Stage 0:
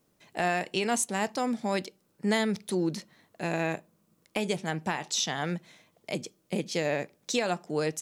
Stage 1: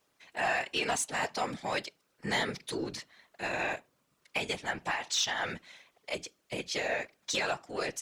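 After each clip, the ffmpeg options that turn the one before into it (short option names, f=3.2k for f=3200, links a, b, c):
-filter_complex "[0:a]asplit=2[a][b];[b]highpass=f=720:p=1,volume=10dB,asoftclip=type=tanh:threshold=-15.5dB[c];[a][c]amix=inputs=2:normalize=0,lowpass=f=1.5k:p=1,volume=-6dB,tiltshelf=f=1.2k:g=-7.5,afftfilt=real='hypot(re,im)*cos(2*PI*random(0))':imag='hypot(re,im)*sin(2*PI*random(1))':win_size=512:overlap=0.75,volume=5dB"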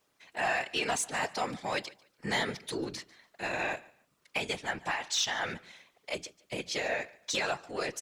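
-af "aecho=1:1:145|290:0.075|0.018"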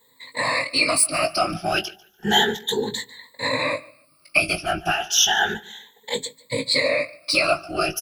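-filter_complex "[0:a]afftfilt=real='re*pow(10,24/40*sin(2*PI*(1*log(max(b,1)*sr/1024/100)/log(2)-(0.32)*(pts-256)/sr)))':imag='im*pow(10,24/40*sin(2*PI*(1*log(max(b,1)*sr/1024/100)/log(2)-(0.32)*(pts-256)/sr)))':win_size=1024:overlap=0.75,aexciter=amount=1.9:drive=1:freq=3.5k,asplit=2[a][b];[b]adelay=19,volume=-7dB[c];[a][c]amix=inputs=2:normalize=0,volume=4.5dB"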